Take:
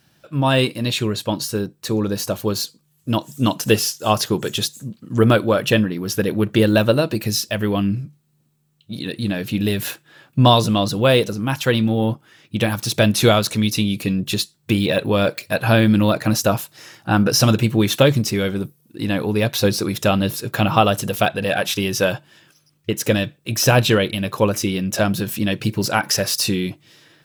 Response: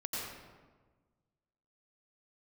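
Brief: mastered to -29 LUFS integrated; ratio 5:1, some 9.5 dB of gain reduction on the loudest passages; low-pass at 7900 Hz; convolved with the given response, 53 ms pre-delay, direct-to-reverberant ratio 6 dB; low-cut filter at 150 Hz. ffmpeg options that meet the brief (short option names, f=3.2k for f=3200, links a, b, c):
-filter_complex "[0:a]highpass=150,lowpass=7.9k,acompressor=threshold=-20dB:ratio=5,asplit=2[a][b];[1:a]atrim=start_sample=2205,adelay=53[c];[b][c]afir=irnorm=-1:irlink=0,volume=-9dB[d];[a][d]amix=inputs=2:normalize=0,volume=-4.5dB"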